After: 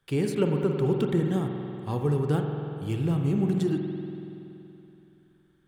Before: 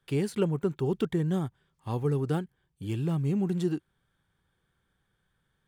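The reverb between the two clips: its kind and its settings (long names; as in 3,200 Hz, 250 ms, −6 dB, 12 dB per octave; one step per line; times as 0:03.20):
spring reverb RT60 3 s, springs 47 ms, chirp 45 ms, DRR 3 dB
level +1.5 dB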